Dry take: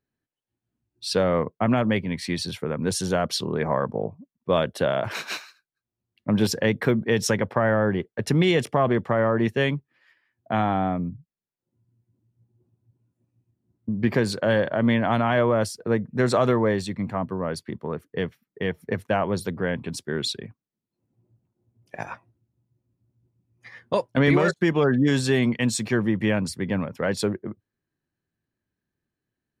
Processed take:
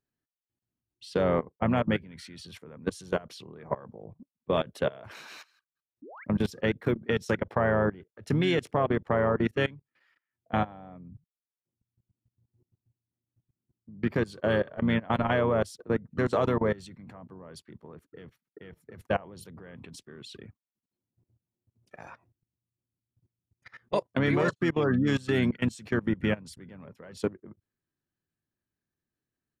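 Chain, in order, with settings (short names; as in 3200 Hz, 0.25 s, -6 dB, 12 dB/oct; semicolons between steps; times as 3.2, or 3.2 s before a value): painted sound rise, 6.02–6.24, 250–2400 Hz -30 dBFS; level quantiser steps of 22 dB; harmoniser -5 st -10 dB; gain -2.5 dB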